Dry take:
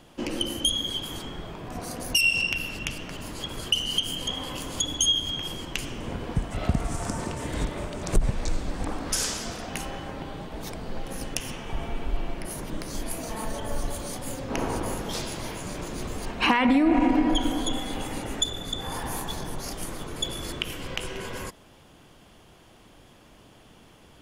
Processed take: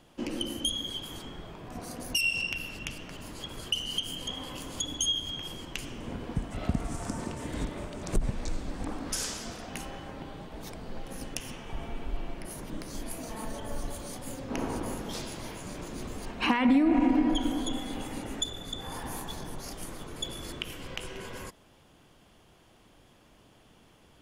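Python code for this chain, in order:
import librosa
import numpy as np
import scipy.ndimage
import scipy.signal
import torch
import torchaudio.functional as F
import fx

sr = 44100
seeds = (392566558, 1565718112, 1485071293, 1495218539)

y = fx.dynamic_eq(x, sr, hz=250.0, q=1.8, threshold_db=-40.0, ratio=4.0, max_db=5)
y = y * 10.0 ** (-6.0 / 20.0)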